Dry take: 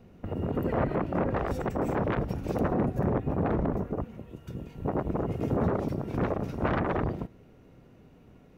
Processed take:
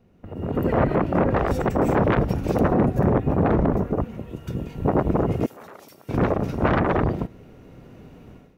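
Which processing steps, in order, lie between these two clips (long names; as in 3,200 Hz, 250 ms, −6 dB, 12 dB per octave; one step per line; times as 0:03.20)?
automatic gain control gain up to 16 dB
0:05.46–0:06.09: first difference
level −5.5 dB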